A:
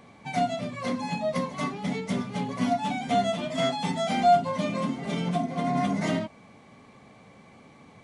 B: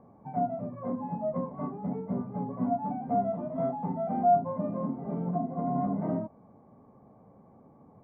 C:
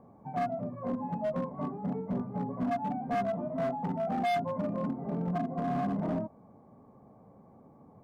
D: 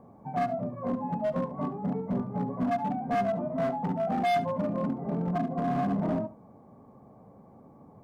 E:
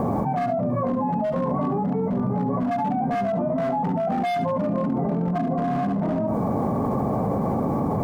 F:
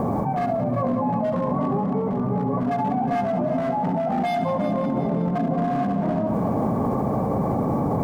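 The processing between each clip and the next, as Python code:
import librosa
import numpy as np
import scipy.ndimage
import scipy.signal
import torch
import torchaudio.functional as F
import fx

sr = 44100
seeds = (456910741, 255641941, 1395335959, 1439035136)

y1 = scipy.signal.sosfilt(scipy.signal.butter(4, 1000.0, 'lowpass', fs=sr, output='sos'), x)
y1 = y1 * 10.0 ** (-3.0 / 20.0)
y2 = np.clip(y1, -10.0 ** (-26.5 / 20.0), 10.0 ** (-26.5 / 20.0))
y3 = y2 + 10.0 ** (-16.0 / 20.0) * np.pad(y2, (int(71 * sr / 1000.0), 0))[:len(y2)]
y3 = y3 * 10.0 ** (3.0 / 20.0)
y4 = fx.env_flatten(y3, sr, amount_pct=100)
y5 = fx.echo_heads(y4, sr, ms=181, heads='first and second', feedback_pct=56, wet_db=-13)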